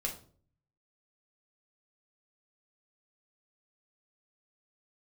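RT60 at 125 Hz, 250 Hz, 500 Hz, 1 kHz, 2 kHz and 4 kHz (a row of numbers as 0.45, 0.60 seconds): 0.90, 0.65, 0.55, 0.40, 0.35, 0.35 seconds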